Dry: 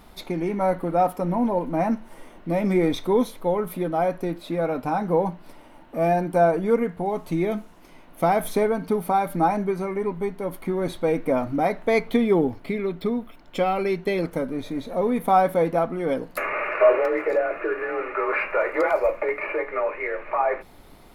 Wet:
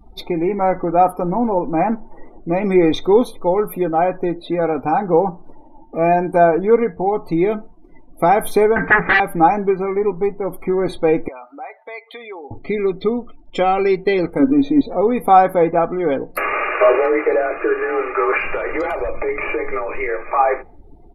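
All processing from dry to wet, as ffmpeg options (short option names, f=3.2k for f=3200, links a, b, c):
-filter_complex "[0:a]asettb=1/sr,asplit=3[a][b][c];[a]atrim=end=8.764[d];[b]atrim=start=8.76:end=9.2,asetpts=PTS-STARTPTS,afade=t=in:d=0.004:c=qsin,afade=t=out:st=0.436:d=0.004:c=qsin,acontrast=80,aeval=exprs='0.106*(abs(mod(val(0)/0.106+3,4)-2)-1)':c=same,lowpass=f=1.8k:t=q:w=5.4[e];[c]atrim=start=9.196[f];[d][e]acrossfade=d=0.004:c1=hsin:c2=qsin[g];[g][f]acrossfade=d=0.004:c1=qsin:c2=hsin,asettb=1/sr,asplit=3[h][i][j];[h]atrim=end=11.284[k];[i]atrim=start=11.28:end=12.51,asetpts=PTS-STARTPTS,afade=t=in:d=0.004:c=qsin,afade=t=out:st=1.226:d=0.004:c=qsin,highpass=850,acompressor=threshold=-41dB:ratio=2.5:attack=3.2:release=140:knee=1:detection=peak[l];[j]atrim=start=12.506[m];[k][l]acrossfade=d=0.004:c1=hsin:c2=qsin[n];[n][m]acrossfade=d=0.004:c1=qsin:c2=hsin,asettb=1/sr,asplit=3[o][p][q];[o]atrim=end=14.394[r];[p]atrim=start=14.39:end=14.81,asetpts=PTS-STARTPTS,afade=t=in:d=0.004:c=qsin,afade=t=out:st=0.416:d=0.004:c=qsin,equalizer=f=280:w=4.7:g=14,asplit=2[s][t];[t]adelay=15,volume=-11dB[u];[s][u]amix=inputs=2:normalize=0,atrim=end_sample=18522[v];[q]atrim=start=14.806[w];[r][v]acrossfade=d=0.004:c1=hsin:c2=qsin[x];[x][w]acrossfade=d=0.004:c1=qsin:c2=hsin,asettb=1/sr,asplit=3[y][z][aa];[y]atrim=end=18.374[ab];[z]atrim=start=18.37:end=20.09,asetpts=PTS-STARTPTS,afade=t=in:d=0.004:c=qsin,afade=t=out:st=1.716:d=0.004:c=qsin,bass=f=250:g=12,treble=f=4k:g=13,asoftclip=type=hard:threshold=-15.5dB,acompressor=threshold=-24dB:ratio=8:attack=3.2:release=140:knee=1:detection=peak[ac];[aa]atrim=start=20.086[ad];[ab][ac]acrossfade=d=0.004:c1=hsin:c2=qsin[ae];[ae][ad]acrossfade=d=0.004:c1=qsin:c2=hsin,afftdn=nr=33:nf=-44,aecho=1:1:2.5:0.38,volume=6dB"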